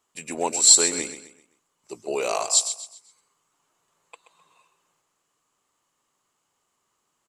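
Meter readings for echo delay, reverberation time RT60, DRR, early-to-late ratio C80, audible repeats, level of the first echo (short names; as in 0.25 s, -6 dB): 0.129 s, none, none, none, 3, -11.0 dB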